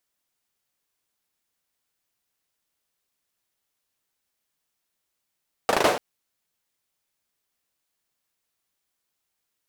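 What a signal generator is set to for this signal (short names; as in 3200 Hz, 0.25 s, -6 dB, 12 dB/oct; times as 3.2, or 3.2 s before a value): hand clap length 0.29 s, bursts 5, apart 38 ms, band 560 Hz, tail 0.50 s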